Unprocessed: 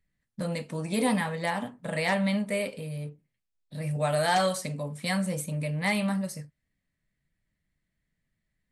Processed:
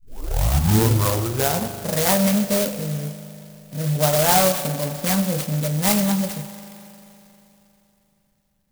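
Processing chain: tape start-up on the opening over 1.79 s; spring tank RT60 3.3 s, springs 39 ms, chirp 25 ms, DRR 10 dB; sampling jitter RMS 0.14 ms; trim +8 dB

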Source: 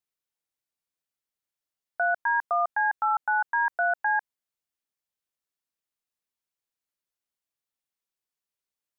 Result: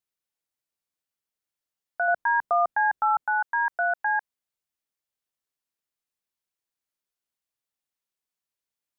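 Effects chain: 2.08–3.24 s: bass shelf 470 Hz +12 dB

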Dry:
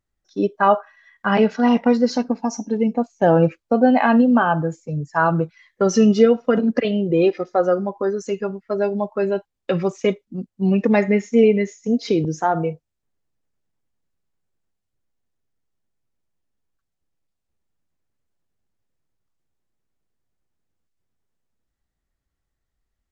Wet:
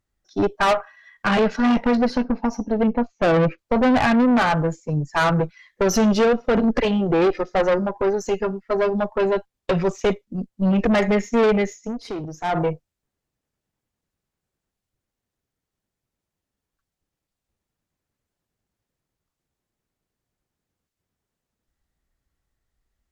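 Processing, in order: 1.95–3.58 s: low-pass 3.2 kHz 12 dB/octave; valve stage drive 20 dB, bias 0.65; 11.75–12.58 s: dip -10.5 dB, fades 0.18 s; trim +6 dB

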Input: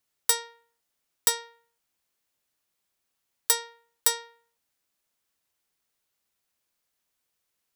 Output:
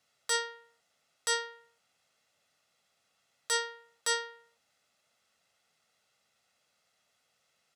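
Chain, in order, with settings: high-pass 130 Hz 12 dB/octave; hum notches 60/120/180 Hz; comb 1.5 ms, depth 57%; in parallel at -2.5 dB: compression, threshold -37 dBFS, peak gain reduction 20 dB; on the sum: peak limiter -17 dBFS, peak gain reduction 14.5 dB; distance through air 69 m; trim +4.5 dB

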